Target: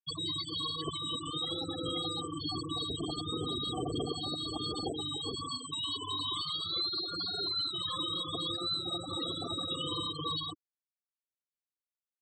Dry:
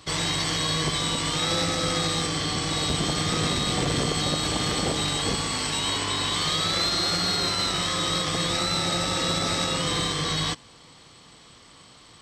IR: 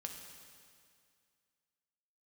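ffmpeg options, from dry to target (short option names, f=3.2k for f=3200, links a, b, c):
-af "afftfilt=real='re*gte(hypot(re,im),0.126)':imag='im*gte(hypot(re,im),0.126)':win_size=1024:overlap=0.75,aemphasis=mode=production:type=75fm,aecho=1:1:2.7:0.65,alimiter=limit=-19dB:level=0:latency=1:release=303,highpass=100,lowpass=3.6k,volume=-4dB"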